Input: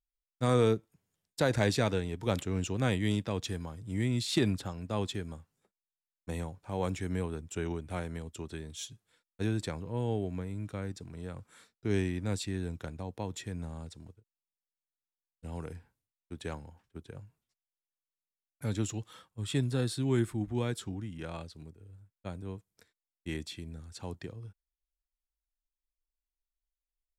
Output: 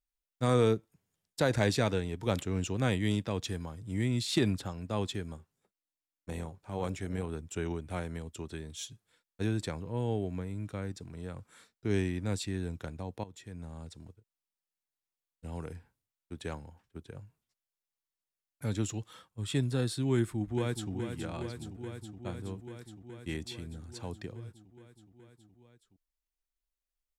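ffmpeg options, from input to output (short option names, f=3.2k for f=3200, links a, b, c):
-filter_complex "[0:a]asettb=1/sr,asplit=3[a][b][c];[a]atrim=end=5.374[d];[b]atrim=start=5.37:end=7.29,asetpts=PTS-STARTPTS,afade=t=in:d=0.004:c=qsin,afade=t=out:st=1.916:d=0.004:c=qsin,tremolo=f=300:d=0.462[e];[c]atrim=start=7.286[f];[d][e]acrossfade=d=0.004:c1=hsin:c2=qsin[g];[g][f]acrossfade=d=0.004:c1=qsin:c2=hsin,asplit=2[h][i];[i]afade=t=in:st=20.15:d=0.01,afade=t=out:st=20.92:d=0.01,aecho=0:1:420|840|1260|1680|2100|2520|2940|3360|3780|4200|4620|5040:0.398107|0.318486|0.254789|0.203831|0.163065|0.130452|0.104361|0.0834891|0.0667913|0.053433|0.0427464|0.0341971[j];[h][j]amix=inputs=2:normalize=0,asplit=2[k][l];[k]atrim=end=13.24,asetpts=PTS-STARTPTS,afade=t=out:st=13.236:d=0.004:c=hsin:silence=0.188365[m];[l]atrim=start=13.24,asetpts=PTS-STARTPTS,afade=t=in:d=0.75:silence=0.188365[n];[m][n]concat=n=2:v=0:a=1"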